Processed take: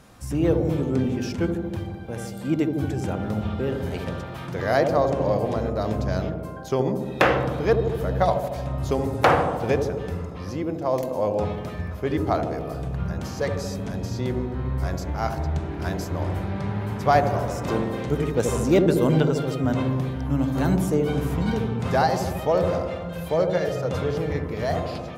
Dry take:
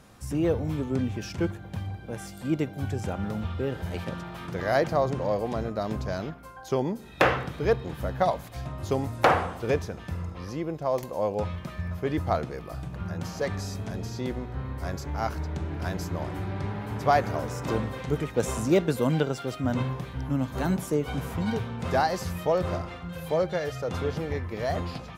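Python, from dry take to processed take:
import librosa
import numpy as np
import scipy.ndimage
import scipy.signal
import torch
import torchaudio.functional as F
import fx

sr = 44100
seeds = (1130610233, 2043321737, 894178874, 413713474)

y = fx.echo_wet_lowpass(x, sr, ms=76, feedback_pct=72, hz=650.0, wet_db=-3.5)
y = y * 10.0 ** (2.5 / 20.0)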